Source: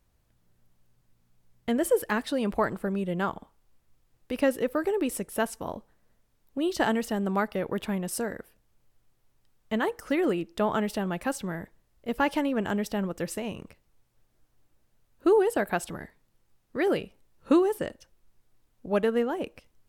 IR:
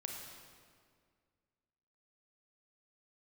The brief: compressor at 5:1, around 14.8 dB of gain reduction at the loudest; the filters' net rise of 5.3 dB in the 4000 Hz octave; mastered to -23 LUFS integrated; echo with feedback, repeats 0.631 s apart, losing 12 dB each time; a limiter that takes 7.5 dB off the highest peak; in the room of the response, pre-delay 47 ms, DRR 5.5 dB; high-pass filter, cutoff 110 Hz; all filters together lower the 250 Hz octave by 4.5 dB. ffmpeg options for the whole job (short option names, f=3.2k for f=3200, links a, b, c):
-filter_complex "[0:a]highpass=110,equalizer=f=250:t=o:g=-6,equalizer=f=4k:t=o:g=7.5,acompressor=threshold=-37dB:ratio=5,alimiter=level_in=7dB:limit=-24dB:level=0:latency=1,volume=-7dB,aecho=1:1:631|1262|1893:0.251|0.0628|0.0157,asplit=2[a][b];[1:a]atrim=start_sample=2205,adelay=47[c];[b][c]afir=irnorm=-1:irlink=0,volume=-4.5dB[d];[a][d]amix=inputs=2:normalize=0,volume=18.5dB"